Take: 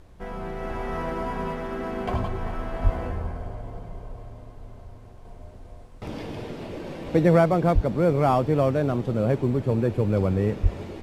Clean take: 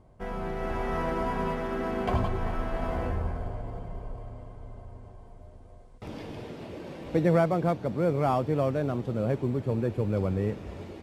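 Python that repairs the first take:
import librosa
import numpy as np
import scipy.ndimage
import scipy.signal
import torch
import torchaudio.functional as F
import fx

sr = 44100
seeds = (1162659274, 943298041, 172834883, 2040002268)

y = fx.highpass(x, sr, hz=140.0, slope=24, at=(2.83, 2.95), fade=0.02)
y = fx.highpass(y, sr, hz=140.0, slope=24, at=(7.74, 7.86), fade=0.02)
y = fx.highpass(y, sr, hz=140.0, slope=24, at=(10.62, 10.74), fade=0.02)
y = fx.noise_reduce(y, sr, print_start_s=5.51, print_end_s=6.01, reduce_db=6.0)
y = fx.gain(y, sr, db=fx.steps((0.0, 0.0), (5.25, -5.0)))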